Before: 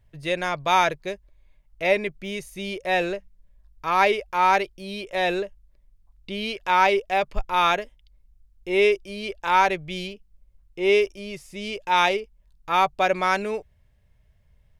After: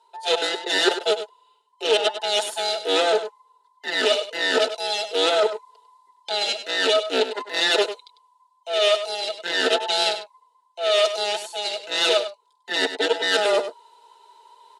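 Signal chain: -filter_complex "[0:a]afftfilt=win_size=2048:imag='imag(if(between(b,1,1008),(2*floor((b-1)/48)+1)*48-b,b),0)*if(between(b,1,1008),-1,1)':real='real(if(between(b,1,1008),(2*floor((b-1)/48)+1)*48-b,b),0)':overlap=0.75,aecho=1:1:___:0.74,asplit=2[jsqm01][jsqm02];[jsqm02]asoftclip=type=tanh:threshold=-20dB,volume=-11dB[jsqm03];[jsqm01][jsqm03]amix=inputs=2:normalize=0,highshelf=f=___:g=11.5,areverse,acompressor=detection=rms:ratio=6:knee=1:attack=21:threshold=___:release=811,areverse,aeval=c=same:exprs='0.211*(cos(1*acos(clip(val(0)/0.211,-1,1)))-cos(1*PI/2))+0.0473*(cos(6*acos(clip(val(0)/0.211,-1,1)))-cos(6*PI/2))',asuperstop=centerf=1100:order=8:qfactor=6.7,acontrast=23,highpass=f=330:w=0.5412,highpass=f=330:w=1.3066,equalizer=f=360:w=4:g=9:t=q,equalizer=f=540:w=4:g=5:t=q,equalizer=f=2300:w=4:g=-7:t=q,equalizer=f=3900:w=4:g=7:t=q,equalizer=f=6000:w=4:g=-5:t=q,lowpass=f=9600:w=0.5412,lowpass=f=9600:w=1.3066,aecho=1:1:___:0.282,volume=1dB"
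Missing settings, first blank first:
4.5, 2700, -26dB, 99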